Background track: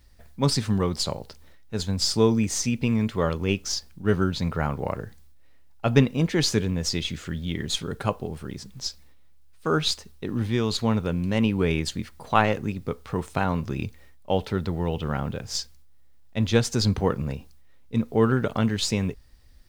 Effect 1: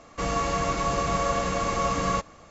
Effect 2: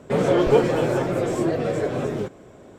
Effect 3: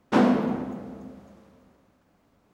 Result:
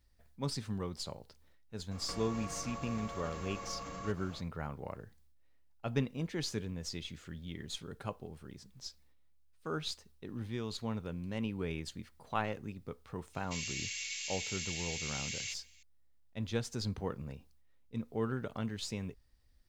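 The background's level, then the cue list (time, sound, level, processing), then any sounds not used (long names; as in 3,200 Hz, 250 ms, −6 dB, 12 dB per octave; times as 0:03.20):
background track −14.5 dB
0:01.91: mix in 1 −2.5 dB + downward compressor 10 to 1, threshold −38 dBFS
0:13.33: mix in 1 −2 dB + Butterworth high-pass 2,200 Hz 48 dB per octave
not used: 2, 3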